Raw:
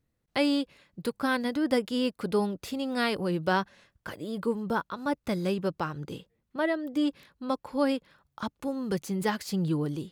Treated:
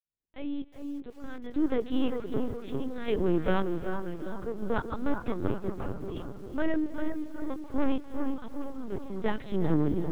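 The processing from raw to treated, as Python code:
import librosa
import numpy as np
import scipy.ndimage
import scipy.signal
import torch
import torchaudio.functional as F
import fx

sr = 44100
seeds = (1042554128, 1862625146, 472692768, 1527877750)

p1 = fx.fade_in_head(x, sr, length_s=2.75)
p2 = fx.peak_eq(p1, sr, hz=320.0, db=9.0, octaves=1.1)
p3 = fx.notch(p2, sr, hz=750.0, q=12.0)
p4 = 10.0 ** (-19.5 / 20.0) * np.tanh(p3 / 10.0 ** (-19.5 / 20.0))
p5 = fx.chopper(p4, sr, hz=0.65, depth_pct=60, duty_pct=45)
p6 = p5 + fx.echo_bbd(p5, sr, ms=393, stages=4096, feedback_pct=50, wet_db=-6, dry=0)
p7 = fx.rev_freeverb(p6, sr, rt60_s=2.8, hf_ratio=0.85, predelay_ms=115, drr_db=17.5)
p8 = fx.lpc_vocoder(p7, sr, seeds[0], excitation='pitch_kept', order=8)
y = fx.echo_crushed(p8, sr, ms=362, feedback_pct=35, bits=8, wet_db=-14.5)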